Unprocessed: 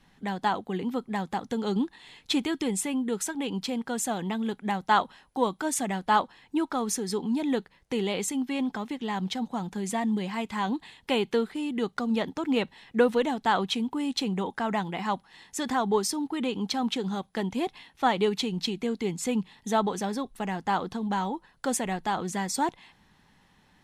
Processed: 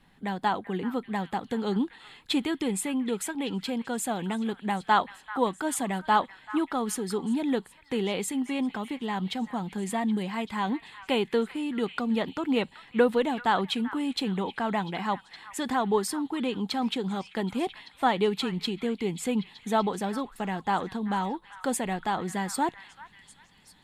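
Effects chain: peaking EQ 5.9 kHz -10 dB 0.42 oct; on a send: repeats whose band climbs or falls 387 ms, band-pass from 1.6 kHz, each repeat 0.7 oct, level -10.5 dB

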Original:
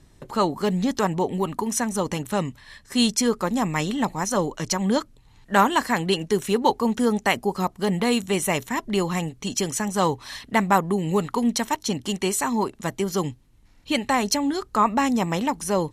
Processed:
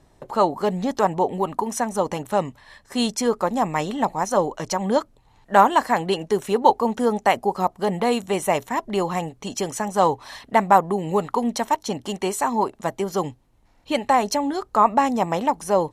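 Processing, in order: peaking EQ 710 Hz +11.5 dB 1.6 oct; trim -4.5 dB

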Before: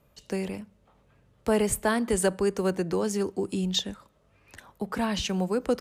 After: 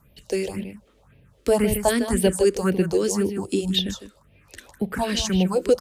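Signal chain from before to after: delay 155 ms -9 dB; phase shifter stages 4, 1.9 Hz, lowest notch 130–1300 Hz; trim +7.5 dB

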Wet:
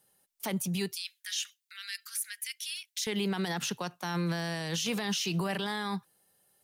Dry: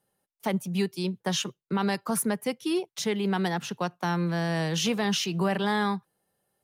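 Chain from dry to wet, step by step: treble shelf 2.2 kHz +11 dB; peak limiter -23.5 dBFS, peak gain reduction 17 dB; 0.93–3.07 s: steep high-pass 1.6 kHz 48 dB/octave

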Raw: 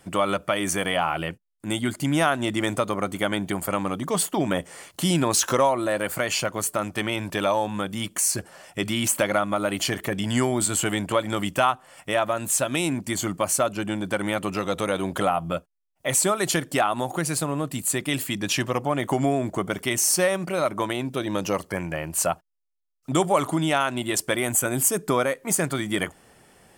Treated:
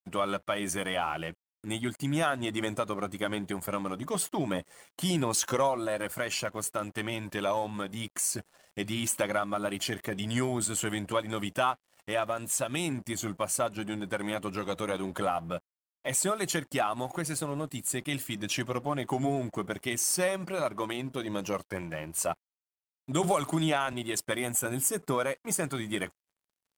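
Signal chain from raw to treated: coarse spectral quantiser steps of 15 dB; crossover distortion -47 dBFS; 23.23–23.93 s: three bands compressed up and down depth 100%; trim -6 dB

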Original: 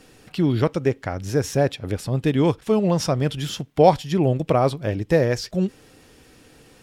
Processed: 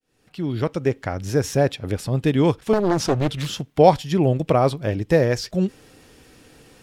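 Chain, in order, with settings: fade-in on the opening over 1.01 s; 2.73–3.56 s: loudspeaker Doppler distortion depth 0.91 ms; trim +1 dB

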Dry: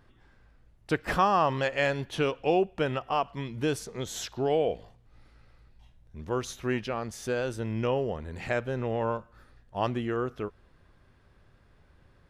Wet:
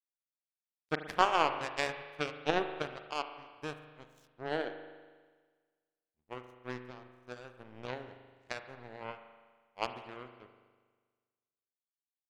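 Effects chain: power-law waveshaper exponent 3; spring tank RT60 1.5 s, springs 40 ms, chirp 35 ms, DRR 8 dB; trim +4 dB

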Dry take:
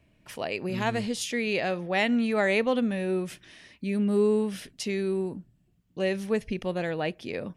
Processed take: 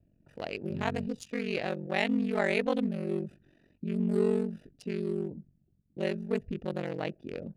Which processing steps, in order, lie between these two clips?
local Wiener filter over 41 samples; ring modulator 23 Hz

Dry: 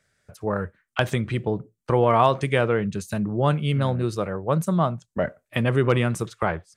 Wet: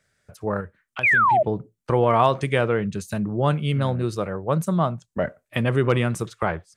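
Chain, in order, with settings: 0.60–1.42 s: compression 3:1, threshold -32 dBFS, peak gain reduction 12 dB; 1.03–1.43 s: painted sound fall 580–2600 Hz -17 dBFS

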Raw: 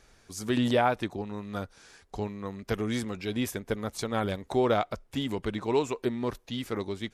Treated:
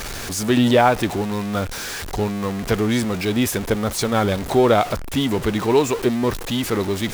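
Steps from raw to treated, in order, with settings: jump at every zero crossing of -33 dBFS; trim +8.5 dB

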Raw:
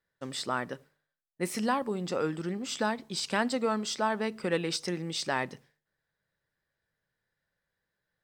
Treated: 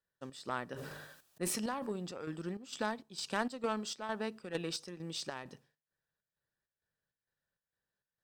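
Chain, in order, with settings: band-stop 2.1 kHz, Q 6.3; in parallel at -1.5 dB: peak limiter -24 dBFS, peak gain reduction 8 dB; on the sum: Chebyshev shaper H 3 -15 dB, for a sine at -13 dBFS; square tremolo 2.2 Hz, depth 60%, duty 65%; 0.68–1.91 s: decay stretcher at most 31 dB/s; trim -6 dB

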